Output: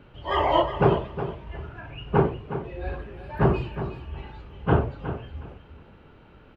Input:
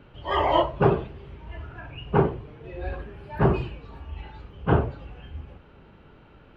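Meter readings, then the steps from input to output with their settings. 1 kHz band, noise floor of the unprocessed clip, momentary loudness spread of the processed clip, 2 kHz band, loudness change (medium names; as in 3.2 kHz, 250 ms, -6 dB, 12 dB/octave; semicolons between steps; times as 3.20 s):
+0.5 dB, -52 dBFS, 17 LU, +0.5 dB, -1.0 dB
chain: feedback delay 364 ms, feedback 21%, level -11 dB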